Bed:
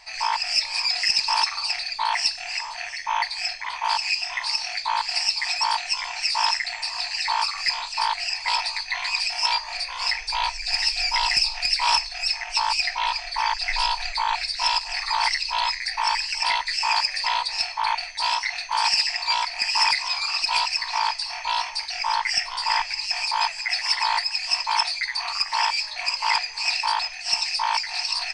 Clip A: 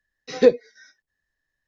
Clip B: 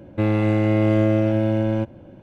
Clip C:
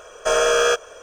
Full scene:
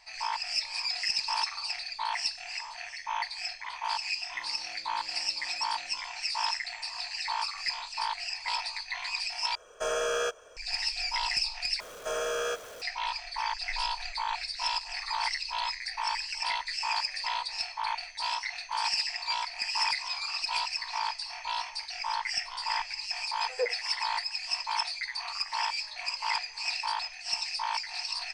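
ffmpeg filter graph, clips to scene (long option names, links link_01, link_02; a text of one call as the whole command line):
ffmpeg -i bed.wav -i cue0.wav -i cue1.wav -i cue2.wav -filter_complex "[3:a]asplit=2[link_01][link_02];[0:a]volume=-8.5dB[link_03];[2:a]aderivative[link_04];[link_02]aeval=exprs='val(0)+0.5*0.0473*sgn(val(0))':channel_layout=same[link_05];[1:a]asuperpass=centerf=1200:order=12:qfactor=0.52[link_06];[link_03]asplit=3[link_07][link_08][link_09];[link_07]atrim=end=9.554[link_10];[link_01]atrim=end=1.02,asetpts=PTS-STARTPTS,volume=-12dB[link_11];[link_08]atrim=start=10.566:end=11.804[link_12];[link_05]atrim=end=1.02,asetpts=PTS-STARTPTS,volume=-15dB[link_13];[link_09]atrim=start=12.816[link_14];[link_04]atrim=end=2.22,asetpts=PTS-STARTPTS,volume=-16.5dB,afade=type=in:duration=0.004:curve=hsin,afade=type=out:start_time=2.216:duration=0.004:curve=hsin,adelay=4160[link_15];[link_06]atrim=end=1.67,asetpts=PTS-STARTPTS,volume=-11.5dB,afade=type=in:duration=0.004:curve=hsin,afade=type=out:start_time=1.666:duration=0.004:curve=hsin,adelay=23160[link_16];[link_10][link_11]acrossfade=duration=0.004:curve1=hsin:curve2=hsin[link_17];[link_17][link_12]acrossfade=duration=0.004:curve1=hsin:curve2=hsin[link_18];[link_18][link_13]acrossfade=duration=0.004:curve1=hsin:curve2=hsin[link_19];[link_19][link_14]acrossfade=duration=0.004:curve1=hsin:curve2=hsin[link_20];[link_20][link_15][link_16]amix=inputs=3:normalize=0" out.wav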